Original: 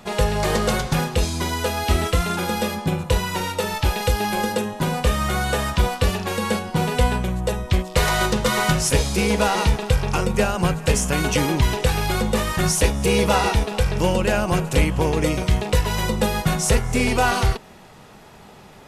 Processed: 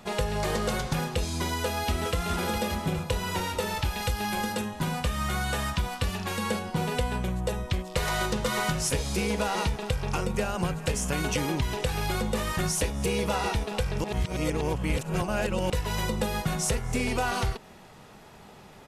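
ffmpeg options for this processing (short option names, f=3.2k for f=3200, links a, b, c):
-filter_complex "[0:a]asplit=2[a][b];[b]afade=t=in:st=1.46:d=0.01,afade=t=out:st=2.17:d=0.01,aecho=0:1:410|820|1230|1640|2050|2460|2870|3280|3690|4100|4510:0.375837|0.263086|0.18416|0.128912|0.0902386|0.063167|0.0442169|0.0309518|0.0216663|0.0151664|0.0106165[c];[a][c]amix=inputs=2:normalize=0,asettb=1/sr,asplit=3[d][e][f];[d]atrim=end=3.834[g];[e]atrim=start=3.83:end=6.46,asetpts=PTS-STARTPTS,afade=t=in:d=0.004:c=qsin,afade=t=out:st=2.626:d=0.004:c=qsin,equalizer=f=470:w=1.5:g=-6.5[h];[f]atrim=start=6.456[i];[g][h]acrossfade=d=0.004:c1=hsin:c2=qsin[j];[j][i]acrossfade=d=0.004:c1=qsin:c2=hsin,asplit=3[k][l][m];[k]atrim=end=14.042[n];[l]atrim=start=14.038:end=15.702,asetpts=PTS-STARTPTS,areverse[o];[m]atrim=start=15.698[p];[n][o]acrossfade=d=0.004:c1=hsin:c2=hsin[q];[q][p]acrossfade=d=0.004:c1=hsin:c2=hsin,acompressor=threshold=-19dB:ratio=6,volume=-4.5dB"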